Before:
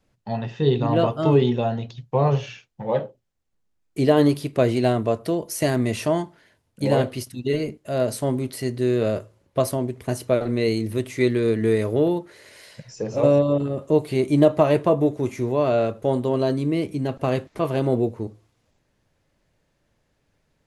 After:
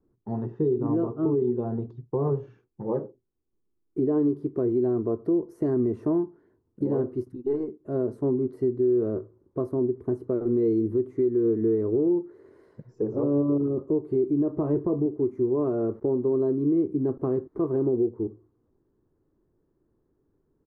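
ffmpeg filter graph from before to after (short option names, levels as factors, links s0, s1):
-filter_complex "[0:a]asettb=1/sr,asplit=3[s0][s1][s2];[s0]atrim=end=7.364[s3];[s1]atrim=start=7.36:end=7.8,asetpts=PTS-STARTPTS,afade=t=in:d=0.004:c=qsin,afade=t=out:st=0.436:d=0.004:c=qsin,highpass=f=460:p=1,aeval=exprs='(tanh(10*val(0)+0.5)-tanh(0.5))/10':c=same[s4];[s2]atrim=start=7.796[s5];[s3][s4]acrossfade=d=0.004:c1=hsin:c2=qsin[s6];[s6][s5]acrossfade=d=0.004:c1=qsin:c2=hsin,asettb=1/sr,asplit=3[s7][s8][s9];[s7]atrim=end=14.524[s10];[s8]atrim=start=14.52:end=15.06,asetpts=PTS-STARTPTS,afade=t=in:d=0.004:c=qsin,afade=t=out:st=0.536:d=0.004:c=qsin,lowshelf=f=120:g=10.5,bandreject=f=6300:w=17,asplit=2[s11][s12];[s12]adelay=28,volume=0.224[s13];[s11][s13]amix=inputs=2:normalize=0,atrim=end_sample=23814[s14];[s9]atrim=start=15.056[s15];[s10][s14]acrossfade=d=0.004:c1=hsin:c2=qsin[s16];[s16][s15]acrossfade=d=0.004:c1=qsin:c2=hsin,asettb=1/sr,asplit=3[s17][s18][s19];[s17]atrim=end=15.754[s20];[s18]atrim=start=15.75:end=16.22,asetpts=PTS-STARTPTS,afade=t=in:d=0.004:c=qsin,afade=t=out:st=0.466:d=0.004:c=qsin,lowpass=f=2600:p=1,aeval=exprs='val(0)*gte(abs(val(0)),0.00531)':c=same[s21];[s19]atrim=start=16.216[s22];[s20][s21]acrossfade=d=0.004:c1=hsin:c2=qsin[s23];[s23][s22]acrossfade=d=0.004:c1=qsin:c2=hsin,firequalizer=gain_entry='entry(180,0);entry(370,13);entry(570,-8);entry(1100,-3);entry(2500,-30)':delay=0.05:min_phase=1,alimiter=limit=0.224:level=0:latency=1:release=285,volume=0.668"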